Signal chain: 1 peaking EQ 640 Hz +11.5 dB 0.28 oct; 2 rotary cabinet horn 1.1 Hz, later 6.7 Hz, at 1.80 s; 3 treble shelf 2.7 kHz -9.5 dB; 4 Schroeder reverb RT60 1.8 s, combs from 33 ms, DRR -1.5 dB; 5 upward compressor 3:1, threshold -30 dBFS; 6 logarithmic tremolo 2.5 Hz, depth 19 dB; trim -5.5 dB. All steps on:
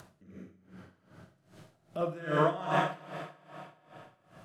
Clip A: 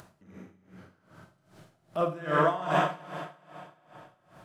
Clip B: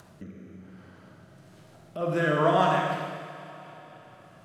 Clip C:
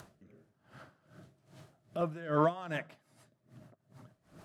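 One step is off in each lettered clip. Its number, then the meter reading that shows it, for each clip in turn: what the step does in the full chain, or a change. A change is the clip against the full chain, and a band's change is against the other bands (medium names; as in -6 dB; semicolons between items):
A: 2, momentary loudness spread change -8 LU; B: 6, loudness change +6.0 LU; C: 4, momentary loudness spread change -10 LU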